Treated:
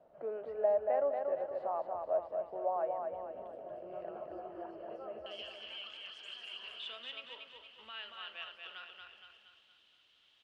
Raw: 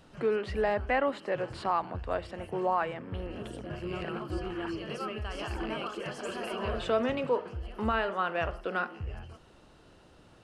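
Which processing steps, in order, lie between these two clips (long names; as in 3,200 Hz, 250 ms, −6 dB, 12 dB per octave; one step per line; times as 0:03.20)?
background noise brown −46 dBFS
resonant band-pass 630 Hz, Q 6.4, from 0:05.26 3,200 Hz
repeating echo 233 ms, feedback 47%, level −4.5 dB
level +2.5 dB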